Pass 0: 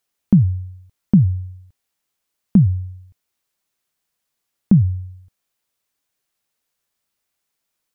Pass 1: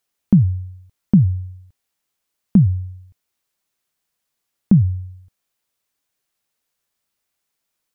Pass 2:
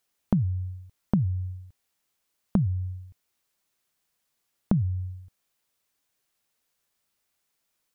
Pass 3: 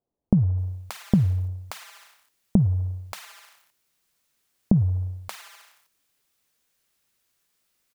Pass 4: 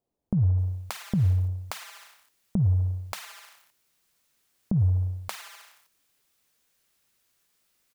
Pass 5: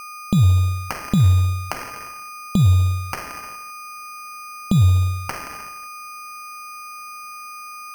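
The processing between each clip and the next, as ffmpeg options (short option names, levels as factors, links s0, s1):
-af anull
-af "acompressor=threshold=0.0794:ratio=5"
-filter_complex "[0:a]acrusher=bits=5:mode=log:mix=0:aa=0.000001,acrossover=split=770[s0][s1];[s1]adelay=580[s2];[s0][s2]amix=inputs=2:normalize=0,volume=1.68"
-af "alimiter=limit=0.168:level=0:latency=1:release=131,volume=1.19"
-af "aeval=exprs='val(0)+0.00891*sin(2*PI*4900*n/s)':c=same,acrusher=samples=12:mix=1:aa=0.000001,volume=2.51"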